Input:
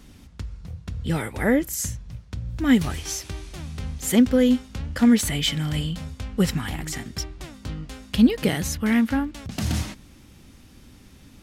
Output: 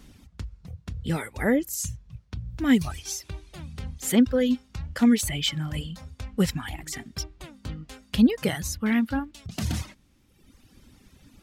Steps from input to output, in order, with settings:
reverb reduction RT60 1.4 s
level −2 dB

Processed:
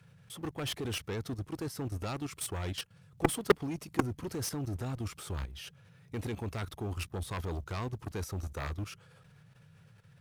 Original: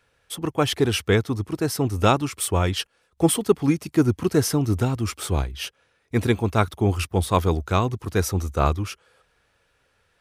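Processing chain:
mu-law and A-law mismatch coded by mu
noise in a band 94–170 Hz −48 dBFS
output level in coarse steps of 13 dB
harmonic generator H 7 −11 dB, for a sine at −5 dBFS
level −6 dB

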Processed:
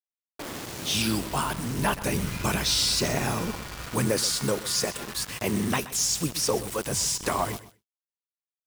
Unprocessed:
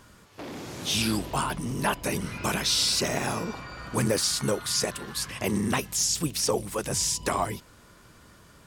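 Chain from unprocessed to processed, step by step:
bit-depth reduction 6 bits, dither none
0:01.77–0:03.87: low-shelf EQ 120 Hz +9 dB
repeating echo 126 ms, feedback 21%, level −16 dB
downward expander −49 dBFS

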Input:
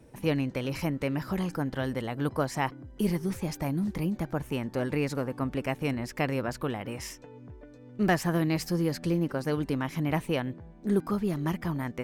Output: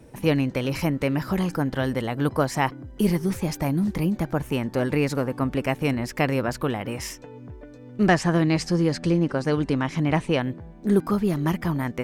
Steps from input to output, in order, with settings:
0:08.07–0:10.41: low-pass filter 8,500 Hz 24 dB per octave
level +6 dB

